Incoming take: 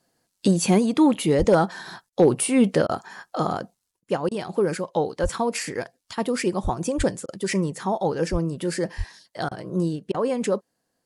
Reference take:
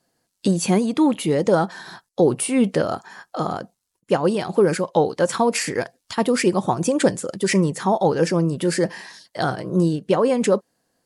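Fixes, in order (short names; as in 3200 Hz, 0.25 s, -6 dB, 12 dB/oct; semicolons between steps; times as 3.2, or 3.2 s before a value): clip repair -8 dBFS; de-plosive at 1.38/5.22/6.63/6.97/8.31/8.97; interpolate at 2.1/2.87/4.29/7.26/9.49/10.12, 22 ms; gain 0 dB, from 3.91 s +5.5 dB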